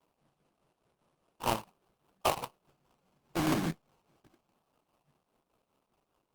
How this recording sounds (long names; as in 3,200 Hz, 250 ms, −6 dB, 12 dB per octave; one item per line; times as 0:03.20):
a quantiser's noise floor 12 bits, dither none
tremolo triangle 4.9 Hz, depth 65%
aliases and images of a low sample rate 1,900 Hz, jitter 20%
Opus